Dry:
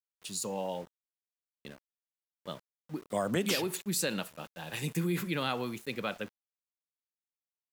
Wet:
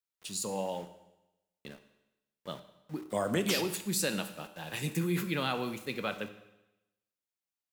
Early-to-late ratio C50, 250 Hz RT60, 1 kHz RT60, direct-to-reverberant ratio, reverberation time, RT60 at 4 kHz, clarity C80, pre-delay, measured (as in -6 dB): 12.0 dB, 0.95 s, 0.95 s, 9.0 dB, 0.95 s, 0.95 s, 14.0 dB, 10 ms